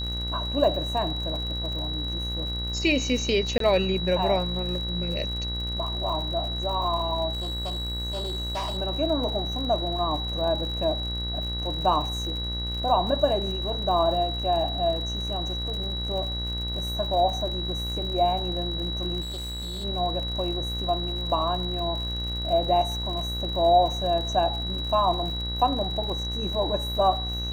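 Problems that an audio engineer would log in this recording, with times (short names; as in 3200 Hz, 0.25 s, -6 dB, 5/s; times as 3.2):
buzz 60 Hz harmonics 36 -32 dBFS
crackle 80/s -34 dBFS
tone 3900 Hz -31 dBFS
3.58–3.6 gap 23 ms
7.32–8.78 clipped -26 dBFS
19.21–19.85 clipped -30.5 dBFS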